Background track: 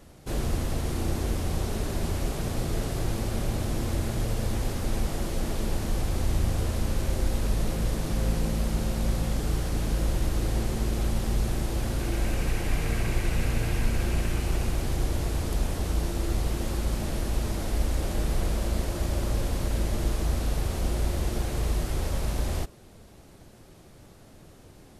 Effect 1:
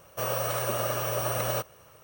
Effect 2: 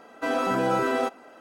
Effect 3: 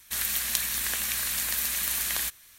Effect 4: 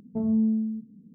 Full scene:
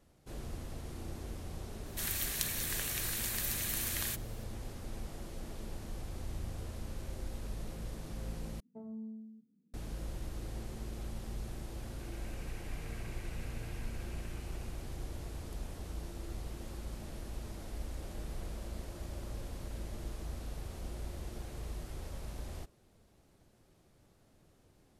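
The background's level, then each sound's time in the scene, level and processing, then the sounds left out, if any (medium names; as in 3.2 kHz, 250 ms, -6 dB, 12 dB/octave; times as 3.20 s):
background track -15 dB
1.86 s: add 3 -8 dB
8.60 s: replace with 4 -11.5 dB + high-pass 640 Hz 6 dB/octave
not used: 1, 2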